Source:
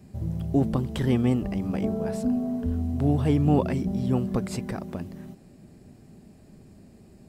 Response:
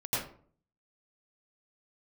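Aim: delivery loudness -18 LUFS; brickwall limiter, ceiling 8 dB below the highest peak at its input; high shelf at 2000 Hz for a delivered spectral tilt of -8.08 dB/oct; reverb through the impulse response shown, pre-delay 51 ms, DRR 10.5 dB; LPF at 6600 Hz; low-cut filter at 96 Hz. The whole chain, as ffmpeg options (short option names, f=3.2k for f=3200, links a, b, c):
-filter_complex "[0:a]highpass=96,lowpass=6.6k,highshelf=f=2k:g=-8,alimiter=limit=-17.5dB:level=0:latency=1,asplit=2[a][b];[1:a]atrim=start_sample=2205,adelay=51[c];[b][c]afir=irnorm=-1:irlink=0,volume=-17dB[d];[a][d]amix=inputs=2:normalize=0,volume=10.5dB"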